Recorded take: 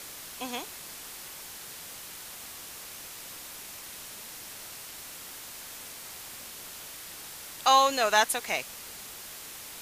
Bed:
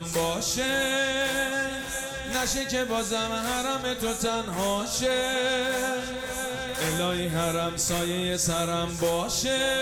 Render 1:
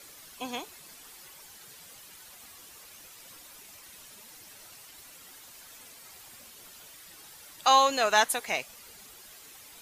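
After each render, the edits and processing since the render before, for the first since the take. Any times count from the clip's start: noise reduction 10 dB, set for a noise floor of -44 dBFS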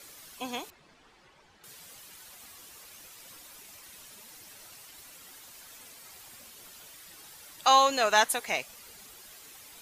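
0.70–1.64 s: tape spacing loss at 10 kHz 27 dB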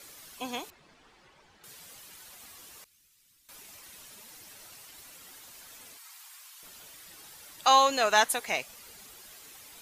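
2.84–3.49 s: amplifier tone stack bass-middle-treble 6-0-2; 5.97–6.63 s: Chebyshev high-pass 970 Hz, order 3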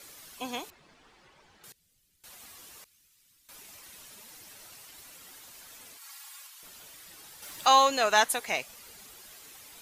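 1.72–2.24 s: amplifier tone stack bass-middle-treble 10-0-1; 6.01–6.47 s: comb 3.6 ms, depth 94%; 7.42–7.89 s: companding laws mixed up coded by mu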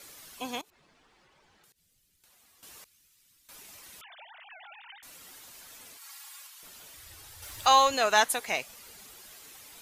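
0.61–2.63 s: compression, threshold -60 dBFS; 4.01–5.03 s: formants replaced by sine waves; 6.97–7.94 s: resonant low shelf 130 Hz +11 dB, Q 3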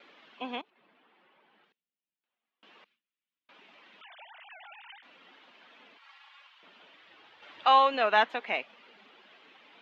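elliptic band-pass 210–3100 Hz, stop band 50 dB; gate with hold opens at -57 dBFS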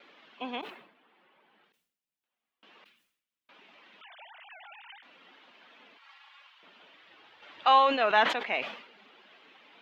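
decay stretcher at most 85 dB/s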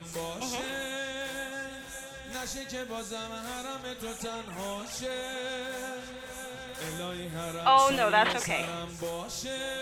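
add bed -10 dB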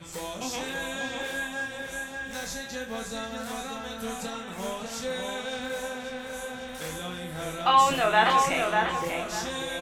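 doubling 27 ms -4.5 dB; feedback echo behind a low-pass 594 ms, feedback 30%, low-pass 2.7 kHz, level -3.5 dB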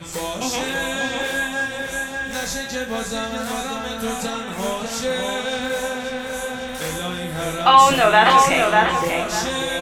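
trim +9 dB; peak limiter -2 dBFS, peak gain reduction 3 dB

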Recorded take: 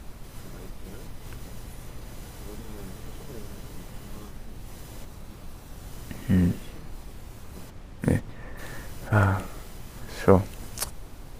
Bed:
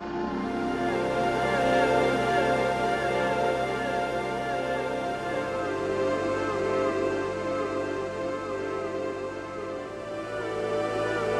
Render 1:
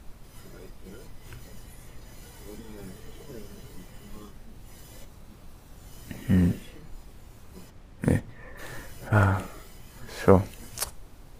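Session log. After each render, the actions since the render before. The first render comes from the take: noise print and reduce 6 dB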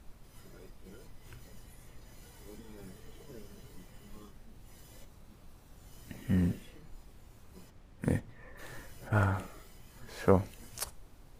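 trim -7 dB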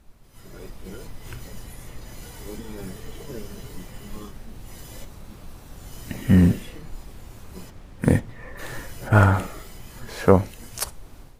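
level rider gain up to 13.5 dB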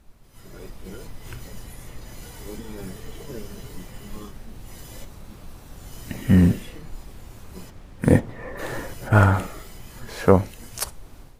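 8.11–8.94 s: peaking EQ 480 Hz +8.5 dB 2.8 oct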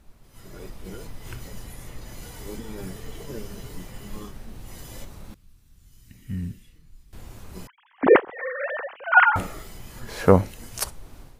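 5.34–7.13 s: amplifier tone stack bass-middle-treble 6-0-2; 7.67–9.36 s: formants replaced by sine waves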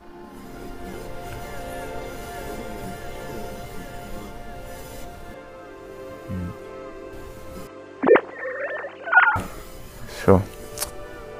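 add bed -11.5 dB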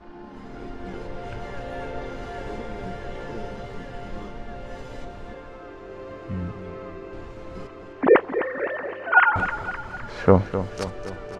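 distance through air 140 m; feedback delay 257 ms, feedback 54%, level -11 dB

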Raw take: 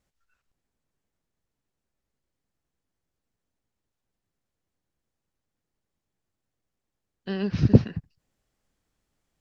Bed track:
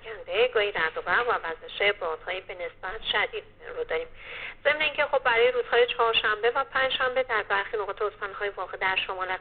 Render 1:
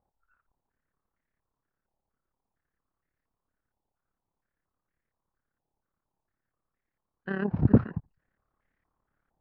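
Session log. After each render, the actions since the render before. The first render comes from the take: AM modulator 35 Hz, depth 50%; step-sequenced low-pass 4.3 Hz 840–1900 Hz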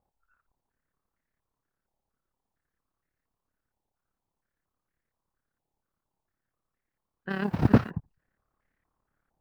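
7.29–7.89 s: formants flattened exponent 0.6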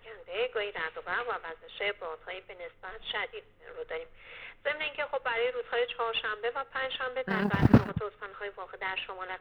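add bed track -8.5 dB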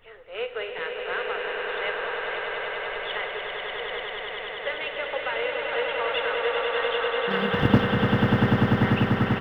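doubling 46 ms -13 dB; echo with a slow build-up 98 ms, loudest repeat 8, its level -6 dB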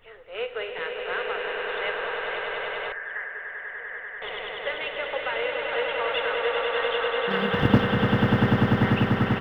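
2.92–4.22 s: four-pole ladder low-pass 1.8 kHz, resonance 85%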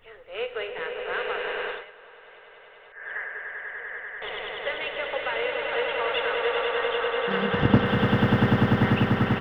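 0.67–1.14 s: treble shelf 4.1 kHz -9 dB; 1.66–3.11 s: dip -19 dB, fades 0.19 s; 6.72–7.86 s: distance through air 110 m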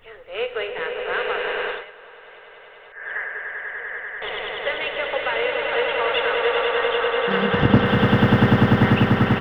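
trim +5 dB; peak limiter -2 dBFS, peak gain reduction 2 dB

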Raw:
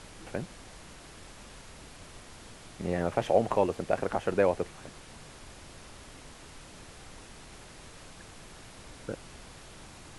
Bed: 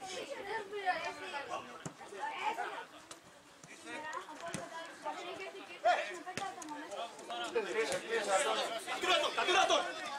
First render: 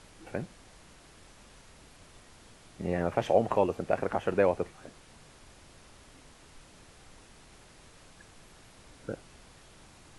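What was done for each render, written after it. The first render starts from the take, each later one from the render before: noise print and reduce 6 dB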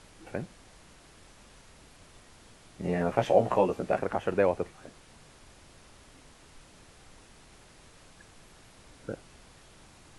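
2.82–3.99 s: doubling 16 ms -3 dB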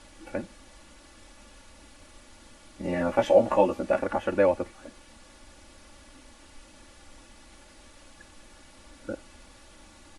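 comb 3.5 ms, depth 92%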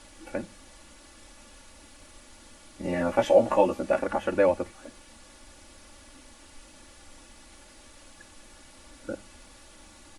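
treble shelf 6.5 kHz +5.5 dB; hum notches 50/100/150/200 Hz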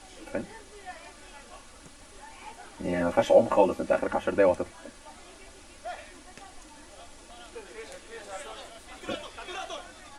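add bed -8.5 dB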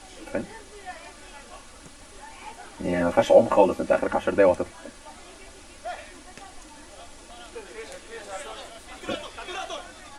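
trim +3.5 dB

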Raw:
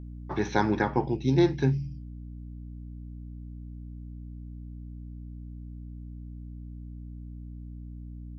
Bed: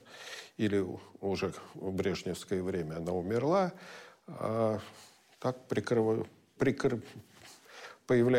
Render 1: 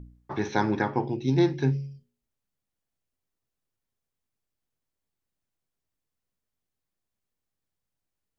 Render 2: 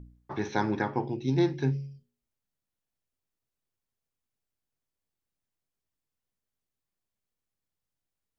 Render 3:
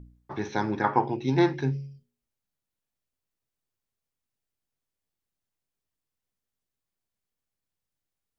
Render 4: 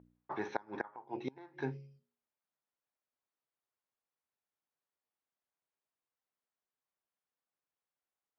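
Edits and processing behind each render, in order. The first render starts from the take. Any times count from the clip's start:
de-hum 60 Hz, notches 9
trim -3 dB
0.84–1.61 s: peaking EQ 1.2 kHz +13 dB 2.1 oct
inverted gate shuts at -16 dBFS, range -27 dB; band-pass filter 960 Hz, Q 0.83

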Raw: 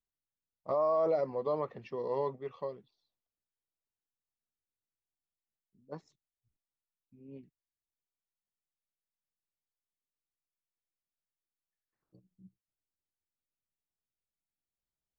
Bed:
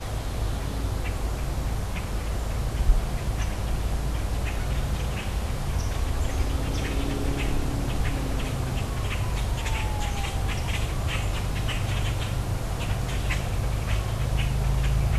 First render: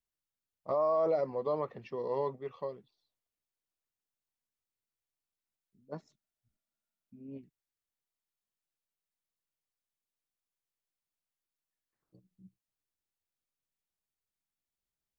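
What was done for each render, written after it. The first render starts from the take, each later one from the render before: 5.92–7.37 s: small resonant body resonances 220/630/1400 Hz, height 9 dB -> 11 dB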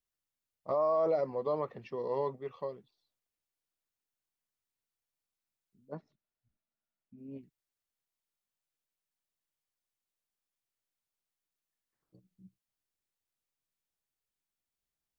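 5.92–7.18 s: distance through air 290 m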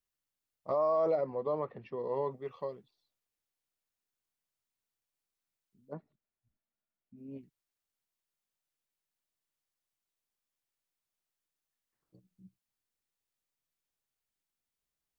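1.15–2.31 s: distance through air 230 m; 5.93–7.16 s: distance through air 370 m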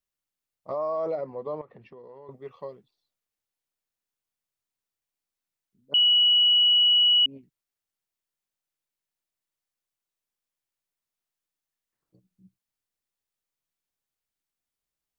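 1.61–2.29 s: compression, threshold -44 dBFS; 5.94–7.26 s: bleep 2.93 kHz -16 dBFS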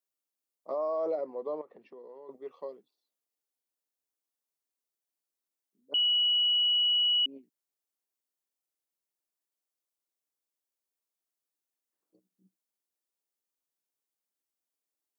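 high-pass 260 Hz 24 dB/octave; peaking EQ 2.1 kHz -7.5 dB 2.5 oct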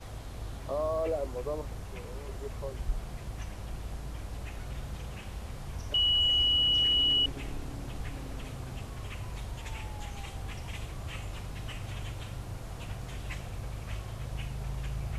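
add bed -12 dB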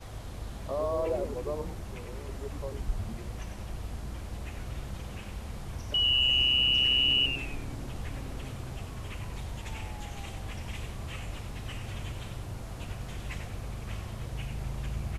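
frequency-shifting echo 96 ms, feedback 43%, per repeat -130 Hz, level -7.5 dB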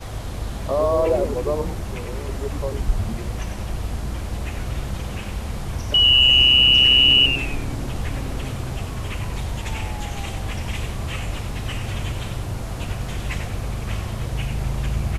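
trim +11 dB

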